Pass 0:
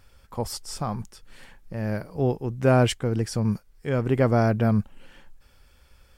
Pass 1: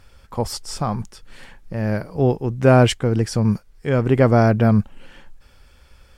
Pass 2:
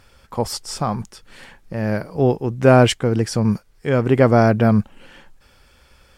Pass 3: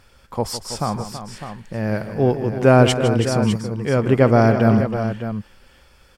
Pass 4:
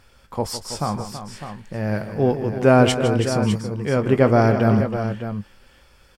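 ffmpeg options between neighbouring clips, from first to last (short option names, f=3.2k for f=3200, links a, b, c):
-af "highshelf=f=12k:g=-9.5,volume=6dB"
-af "lowshelf=f=83:g=-9,volume=2dB"
-af "aecho=1:1:157|327|604:0.251|0.282|0.299,volume=-1dB"
-filter_complex "[0:a]asplit=2[a][b];[b]adelay=20,volume=-12dB[c];[a][c]amix=inputs=2:normalize=0,volume=-1.5dB"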